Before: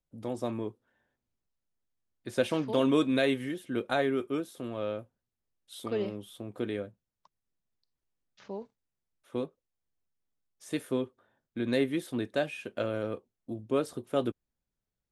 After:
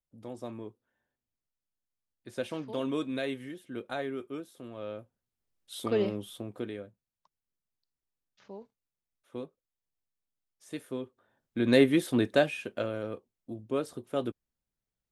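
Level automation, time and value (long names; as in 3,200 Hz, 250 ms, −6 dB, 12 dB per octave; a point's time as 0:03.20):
0:04.73 −7 dB
0:05.77 +4 dB
0:06.32 +4 dB
0:06.76 −6 dB
0:11.00 −6 dB
0:11.76 +6.5 dB
0:12.33 +6.5 dB
0:12.96 −2.5 dB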